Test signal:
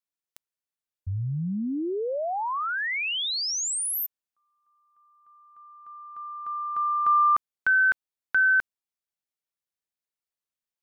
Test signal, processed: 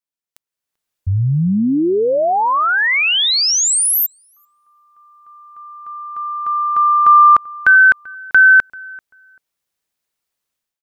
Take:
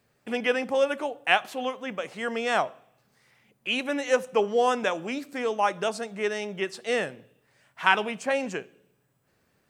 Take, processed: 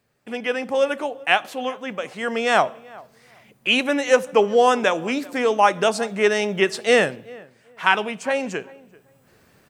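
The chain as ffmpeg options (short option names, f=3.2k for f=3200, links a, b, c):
-filter_complex "[0:a]dynaudnorm=f=440:g=3:m=14.5dB,asplit=2[a][b];[b]adelay=389,lowpass=f=1.7k:p=1,volume=-22dB,asplit=2[c][d];[d]adelay=389,lowpass=f=1.7k:p=1,volume=0.22[e];[a][c][e]amix=inputs=3:normalize=0,volume=-1dB"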